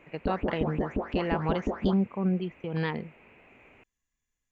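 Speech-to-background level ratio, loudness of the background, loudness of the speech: 2.0 dB, −33.0 LKFS, −31.0 LKFS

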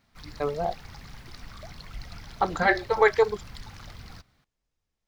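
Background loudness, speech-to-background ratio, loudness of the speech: −44.5 LKFS, 19.5 dB, −25.0 LKFS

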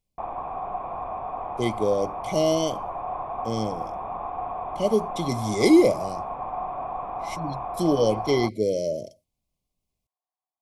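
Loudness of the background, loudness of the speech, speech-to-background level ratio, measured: −32.5 LKFS, −24.0 LKFS, 8.5 dB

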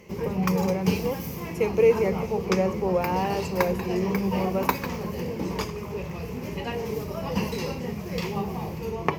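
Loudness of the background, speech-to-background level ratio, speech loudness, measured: −30.5 LKFS, 3.5 dB, −27.0 LKFS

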